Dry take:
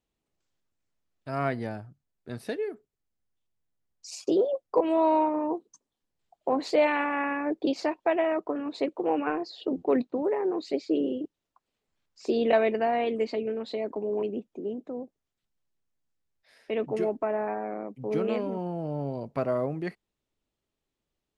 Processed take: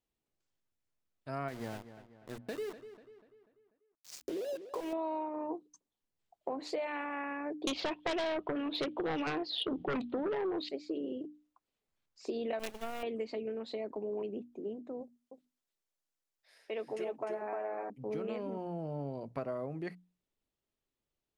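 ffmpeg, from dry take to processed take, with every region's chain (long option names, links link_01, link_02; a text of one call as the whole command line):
ffmpeg -i in.wav -filter_complex "[0:a]asettb=1/sr,asplit=3[link_01][link_02][link_03];[link_01]atrim=end=1.484[link_04];[link_02]atrim=start=1.48:end=4.93,asetpts=PTS-STARTPTS,afade=type=in:duration=0.004:curve=qsin,afade=type=out:start_time=3.446:duration=0.004:curve=qsin,acompressor=threshold=-27dB:ratio=6:attack=3.2:release=140:knee=1:detection=peak,aeval=exprs='val(0)*gte(abs(val(0)),0.0133)':channel_layout=same,asplit=2[link_05][link_06];[link_06]adelay=245,lowpass=frequency=3800:poles=1,volume=-13dB,asplit=2[link_07][link_08];[link_08]adelay=245,lowpass=frequency=3800:poles=1,volume=0.48,asplit=2[link_09][link_10];[link_10]adelay=245,lowpass=frequency=3800:poles=1,volume=0.48,asplit=2[link_11][link_12];[link_12]adelay=245,lowpass=frequency=3800:poles=1,volume=0.48,asplit=2[link_13][link_14];[link_14]adelay=245,lowpass=frequency=3800:poles=1,volume=0.48[link_15];[link_05][link_07][link_09][link_11][link_13][link_15]amix=inputs=6:normalize=0,atrim=end_sample=152145[link_16];[link_03]atrim=start=4.926[link_17];[link_04][link_16]acrossfade=duration=0.004:curve1=hsin:curve2=qsin[link_18];[link_18][link_17]acrossfade=duration=0.004:curve1=qsin:curve2=hsin,asettb=1/sr,asplit=3[link_19][link_20][link_21];[link_19]atrim=end=7.674[link_22];[link_20]atrim=start=7.67:end=10.69,asetpts=PTS-STARTPTS,afade=type=in:duration=0.004:curve=qsin,afade=type=out:start_time=3.016:duration=0.004:curve=qsin,lowpass=frequency=3300:width_type=q:width=5.1,aeval=exprs='0.251*sin(PI/2*3.16*val(0)/0.251)':channel_layout=same[link_23];[link_21]atrim=start=10.686[link_24];[link_22][link_23]acrossfade=duration=0.004:curve1=hsin:curve2=qsin[link_25];[link_25][link_24]acrossfade=duration=0.004:curve1=qsin:curve2=hsin,asettb=1/sr,asplit=3[link_26][link_27][link_28];[link_26]atrim=end=12.594[link_29];[link_27]atrim=start=12.59:end=13.03,asetpts=PTS-STARTPTS,afade=type=in:duration=0.004:curve=qsin,afade=type=out:start_time=0.436:duration=0.004:curve=qsin,agate=range=-33dB:threshold=-23dB:ratio=3:release=100:detection=peak,equalizer=frequency=2800:width_type=o:width=0.34:gain=9.5,acrusher=bits=4:dc=4:mix=0:aa=0.000001[link_30];[link_28]atrim=start=13.026[link_31];[link_29][link_30]acrossfade=duration=0.004:curve1=hsin:curve2=qsin[link_32];[link_32][link_31]acrossfade=duration=0.004:curve1=qsin:curve2=hsin,asettb=1/sr,asplit=3[link_33][link_34][link_35];[link_33]atrim=end=15.014[link_36];[link_34]atrim=start=15.01:end=17.9,asetpts=PTS-STARTPTS,afade=type=in:duration=0.004:curve=qsin,afade=type=out:start_time=2.886:duration=0.004:curve=qsin,bass=frequency=250:gain=-13,treble=frequency=4000:gain=4,bandreject=frequency=50:width_type=h:width=6,bandreject=frequency=100:width_type=h:width=6,bandreject=frequency=150:width_type=h:width=6,bandreject=frequency=200:width_type=h:width=6,bandreject=frequency=250:width_type=h:width=6,aecho=1:1:303:0.708,atrim=end_sample=127449[link_37];[link_35]atrim=start=17.896[link_38];[link_36][link_37]acrossfade=duration=0.004:curve1=hsin:curve2=qsin[link_39];[link_39][link_38]acrossfade=duration=0.004:curve1=qsin:curve2=hsin,bandreject=frequency=60:width_type=h:width=6,bandreject=frequency=120:width_type=h:width=6,bandreject=frequency=180:width_type=h:width=6,bandreject=frequency=240:width_type=h:width=6,bandreject=frequency=300:width_type=h:width=6,acompressor=threshold=-28dB:ratio=6,volume=-5.5dB" out.wav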